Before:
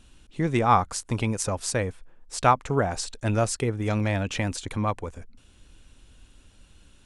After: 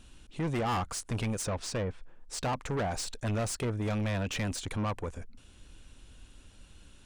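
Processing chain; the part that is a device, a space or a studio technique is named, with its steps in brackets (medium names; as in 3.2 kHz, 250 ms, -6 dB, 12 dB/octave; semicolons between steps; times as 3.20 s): 1.42–2.53 s: low-pass that closes with the level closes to 700 Hz, closed at -17.5 dBFS; saturation between pre-emphasis and de-emphasis (treble shelf 4.3 kHz +6 dB; saturation -27.5 dBFS, distortion -6 dB; treble shelf 4.3 kHz -6 dB)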